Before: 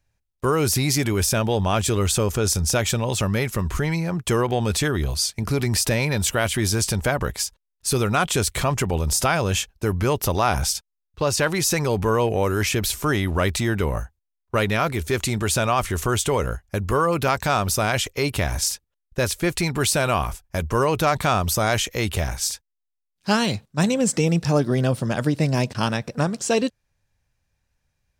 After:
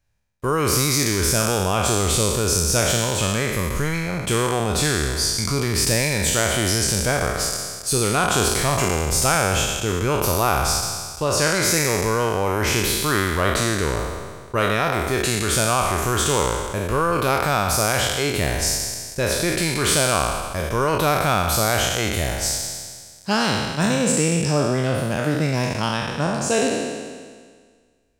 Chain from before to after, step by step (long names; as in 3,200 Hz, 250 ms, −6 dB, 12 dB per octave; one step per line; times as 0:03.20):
peak hold with a decay on every bin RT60 1.71 s
level −2.5 dB